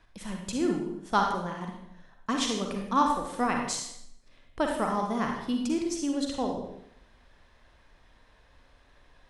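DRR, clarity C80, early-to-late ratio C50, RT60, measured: 1.0 dB, 6.0 dB, 2.5 dB, 0.70 s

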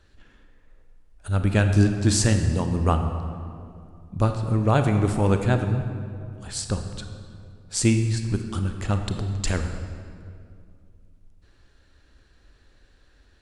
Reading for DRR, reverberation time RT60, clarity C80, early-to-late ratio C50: 6.0 dB, 2.4 s, 8.0 dB, 7.0 dB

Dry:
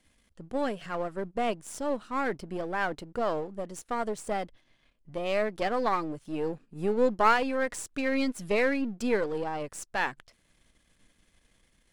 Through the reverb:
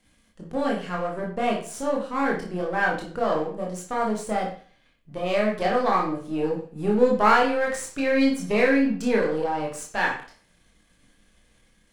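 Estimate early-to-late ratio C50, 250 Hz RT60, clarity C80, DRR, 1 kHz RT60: 5.5 dB, 0.45 s, 10.5 dB, -2.0 dB, 0.45 s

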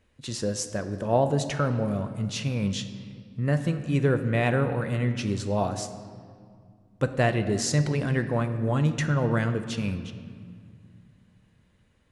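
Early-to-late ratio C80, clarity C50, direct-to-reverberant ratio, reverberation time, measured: 11.0 dB, 10.0 dB, 7.5 dB, 2.2 s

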